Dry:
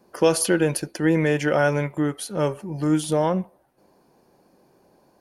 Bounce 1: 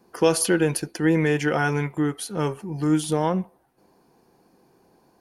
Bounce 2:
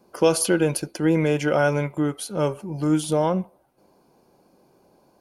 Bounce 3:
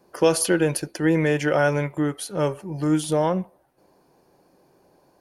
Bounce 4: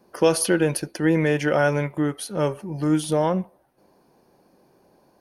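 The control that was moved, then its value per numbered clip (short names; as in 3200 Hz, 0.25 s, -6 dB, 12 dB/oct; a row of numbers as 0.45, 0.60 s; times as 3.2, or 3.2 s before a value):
notch, frequency: 580, 1800, 220, 7400 Hz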